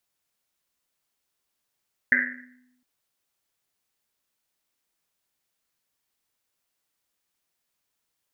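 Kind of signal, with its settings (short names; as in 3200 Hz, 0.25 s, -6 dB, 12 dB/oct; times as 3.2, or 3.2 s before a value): Risset drum length 0.71 s, pitch 250 Hz, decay 1.06 s, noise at 1800 Hz, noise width 460 Hz, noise 80%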